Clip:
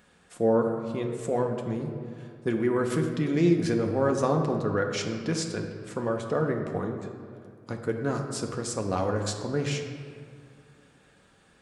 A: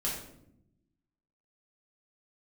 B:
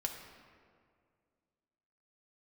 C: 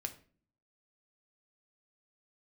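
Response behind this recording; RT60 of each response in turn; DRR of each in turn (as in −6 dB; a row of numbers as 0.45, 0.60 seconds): B; 0.75, 2.1, 0.45 seconds; −6.0, 2.0, 5.5 decibels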